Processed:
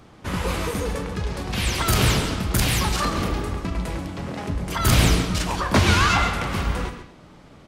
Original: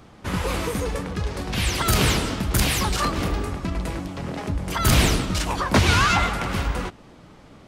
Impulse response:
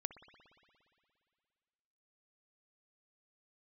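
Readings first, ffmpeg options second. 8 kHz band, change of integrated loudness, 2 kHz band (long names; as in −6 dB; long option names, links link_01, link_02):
−0.5 dB, +0.5 dB, 0.0 dB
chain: -filter_complex "[0:a]aecho=1:1:136:0.266[link_01];[1:a]atrim=start_sample=2205,afade=type=out:start_time=0.44:duration=0.01,atrim=end_sample=19845,asetrate=74970,aresample=44100[link_02];[link_01][link_02]afir=irnorm=-1:irlink=0,volume=7dB"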